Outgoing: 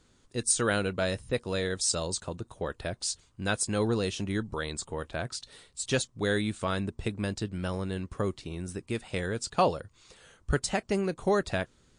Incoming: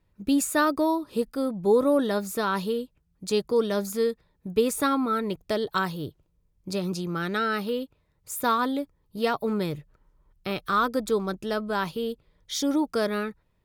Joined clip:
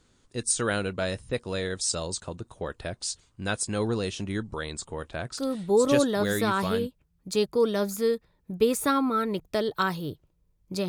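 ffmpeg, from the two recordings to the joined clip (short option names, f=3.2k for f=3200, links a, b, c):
-filter_complex "[0:a]apad=whole_dur=10.88,atrim=end=10.88,atrim=end=6.87,asetpts=PTS-STARTPTS[a];[1:a]atrim=start=1.27:end=6.84,asetpts=PTS-STARTPTS[b];[a][b]acrossfade=d=1.56:c1=log:c2=log"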